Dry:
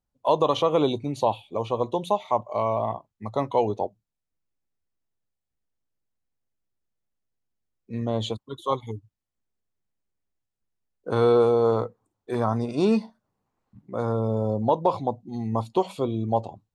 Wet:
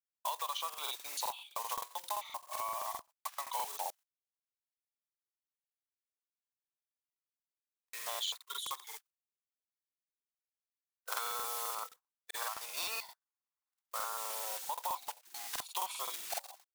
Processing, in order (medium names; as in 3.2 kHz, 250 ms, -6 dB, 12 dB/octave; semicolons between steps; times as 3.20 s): block-companded coder 5-bit; high-pass 990 Hz 24 dB/octave; treble shelf 5.3 kHz +9 dB; gate -53 dBFS, range -21 dB; compression 10:1, threshold -37 dBFS, peak gain reduction 14.5 dB; crackling interface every 0.13 s, samples 2048, repeat, from 0.69 s; trim +2.5 dB